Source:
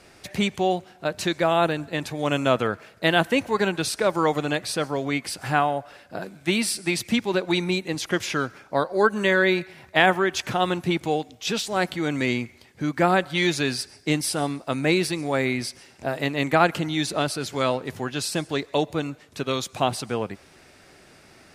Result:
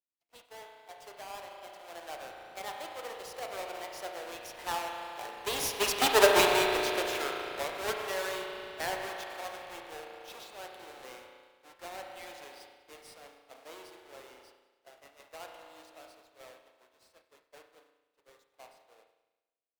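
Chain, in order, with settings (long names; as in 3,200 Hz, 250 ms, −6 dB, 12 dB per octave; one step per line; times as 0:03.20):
each half-wave held at its own peak
source passing by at 0:06.76, 28 m/s, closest 6.5 metres
mains hum 60 Hz, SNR 19 dB
high-pass filter 440 Hz 24 dB per octave
spring reverb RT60 3.6 s, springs 38 ms, chirp 35 ms, DRR 0.5 dB
in parallel at −11 dB: sample-and-hold swept by an LFO 23×, swing 60% 0.86 Hz
on the sum: downward expander −50 dBFS
on a send: feedback echo with a high-pass in the loop 103 ms, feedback 64%, high-pass 930 Hz, level −20 dB
on the sum: wrong playback speed 44.1 kHz file played as 48 kHz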